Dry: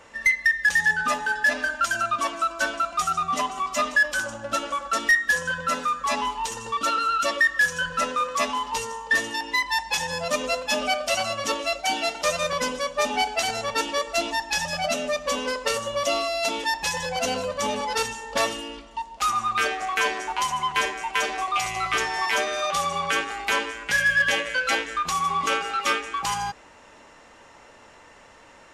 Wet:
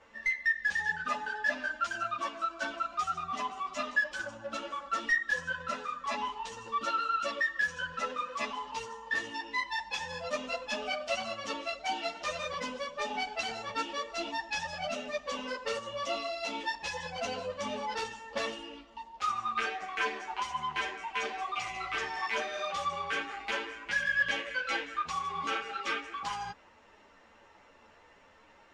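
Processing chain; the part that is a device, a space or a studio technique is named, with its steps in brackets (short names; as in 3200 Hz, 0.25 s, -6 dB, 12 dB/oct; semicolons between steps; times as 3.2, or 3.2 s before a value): string-machine ensemble chorus (ensemble effect; LPF 4800 Hz 12 dB/oct); gain -6 dB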